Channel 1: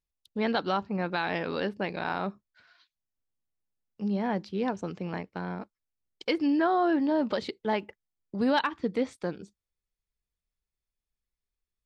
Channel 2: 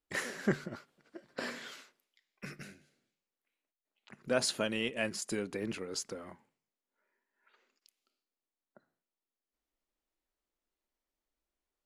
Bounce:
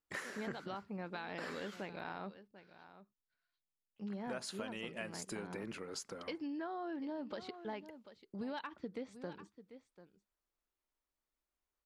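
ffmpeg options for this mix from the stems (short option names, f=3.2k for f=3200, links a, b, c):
-filter_complex "[0:a]volume=-11dB,asplit=2[a][b];[b]volume=-17dB[c];[1:a]equalizer=f=1.2k:t=o:w=1.3:g=5.5,volume=-5.5dB,asplit=3[d][e][f];[d]atrim=end=2.03,asetpts=PTS-STARTPTS,afade=t=out:st=2.026:d=0.004:c=hsin[g];[e]atrim=start=2.03:end=3.96,asetpts=PTS-STARTPTS,volume=0[h];[f]atrim=start=3.96,asetpts=PTS-STARTPTS,afade=t=in:d=0.004:c=hsin[i];[g][h][i]concat=n=3:v=0:a=1[j];[c]aecho=0:1:741:1[k];[a][j][k]amix=inputs=3:normalize=0,acompressor=threshold=-39dB:ratio=6"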